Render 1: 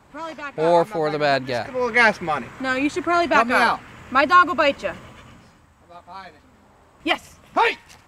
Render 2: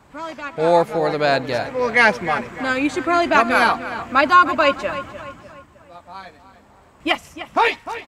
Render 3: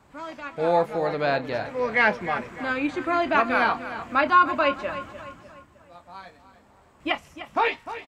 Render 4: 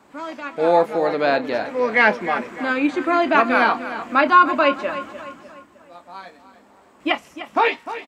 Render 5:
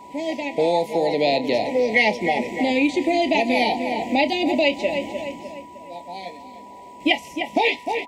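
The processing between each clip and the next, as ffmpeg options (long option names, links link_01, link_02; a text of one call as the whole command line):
ffmpeg -i in.wav -filter_complex "[0:a]asplit=2[link_01][link_02];[link_02]adelay=302,lowpass=frequency=3500:poles=1,volume=-12.5dB,asplit=2[link_03][link_04];[link_04]adelay=302,lowpass=frequency=3500:poles=1,volume=0.45,asplit=2[link_05][link_06];[link_06]adelay=302,lowpass=frequency=3500:poles=1,volume=0.45,asplit=2[link_07][link_08];[link_08]adelay=302,lowpass=frequency=3500:poles=1,volume=0.45[link_09];[link_01][link_03][link_05][link_07][link_09]amix=inputs=5:normalize=0,volume=1.5dB" out.wav
ffmpeg -i in.wav -filter_complex "[0:a]acrossover=split=4100[link_01][link_02];[link_02]acompressor=threshold=-50dB:ratio=4:attack=1:release=60[link_03];[link_01][link_03]amix=inputs=2:normalize=0,asplit=2[link_04][link_05];[link_05]adelay=28,volume=-12.5dB[link_06];[link_04][link_06]amix=inputs=2:normalize=0,volume=-6dB" out.wav
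ffmpeg -i in.wav -af "highpass=50,lowshelf=frequency=170:width_type=q:width=1.5:gain=-10.5,volume=4.5dB" out.wav
ffmpeg -i in.wav -filter_complex "[0:a]asuperstop=centerf=1300:order=20:qfactor=1.3,acrossover=split=120|3000[link_01][link_02][link_03];[link_02]acompressor=threshold=-25dB:ratio=6[link_04];[link_01][link_04][link_03]amix=inputs=3:normalize=0,aeval=exprs='val(0)+0.00398*sin(2*PI*980*n/s)':channel_layout=same,volume=7.5dB" out.wav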